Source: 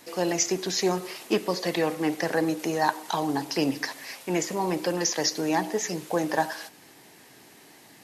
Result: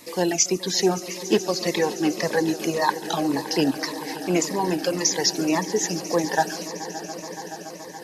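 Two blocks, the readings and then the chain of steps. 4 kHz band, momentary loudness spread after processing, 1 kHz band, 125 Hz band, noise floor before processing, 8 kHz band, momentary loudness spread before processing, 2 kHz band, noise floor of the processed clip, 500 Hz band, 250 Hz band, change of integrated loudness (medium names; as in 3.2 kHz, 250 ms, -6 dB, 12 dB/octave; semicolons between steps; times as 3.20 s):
+5.0 dB, 12 LU, +2.5 dB, +3.5 dB, -53 dBFS, +5.5 dB, 6 LU, +2.5 dB, -38 dBFS, +3.5 dB, +4.0 dB, +3.5 dB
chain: reverb removal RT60 1.8 s; echo with a slow build-up 142 ms, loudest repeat 5, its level -17.5 dB; Shepard-style phaser falling 1.8 Hz; trim +5.5 dB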